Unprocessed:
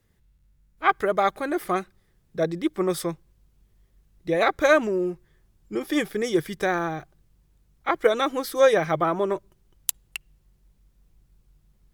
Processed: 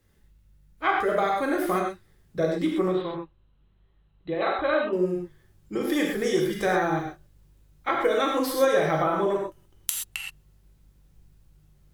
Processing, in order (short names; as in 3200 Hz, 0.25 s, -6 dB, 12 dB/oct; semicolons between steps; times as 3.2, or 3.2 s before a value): compressor 2:1, threshold -26 dBFS, peak gain reduction 8 dB; 2.88–4.93 rippled Chebyshev low-pass 4100 Hz, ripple 6 dB; non-linear reverb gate 0.15 s flat, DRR -1.5 dB